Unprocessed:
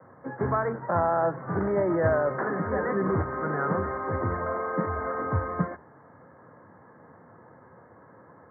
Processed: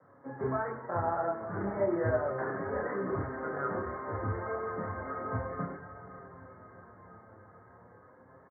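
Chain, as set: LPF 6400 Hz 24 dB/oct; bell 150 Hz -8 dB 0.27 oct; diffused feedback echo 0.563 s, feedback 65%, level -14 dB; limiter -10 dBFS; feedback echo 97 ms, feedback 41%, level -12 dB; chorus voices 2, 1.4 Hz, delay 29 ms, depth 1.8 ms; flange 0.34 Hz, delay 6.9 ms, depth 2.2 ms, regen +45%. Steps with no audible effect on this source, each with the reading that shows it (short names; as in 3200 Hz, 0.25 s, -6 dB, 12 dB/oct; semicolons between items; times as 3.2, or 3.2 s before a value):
LPF 6400 Hz: input band ends at 2200 Hz; limiter -10 dBFS: input peak -12.5 dBFS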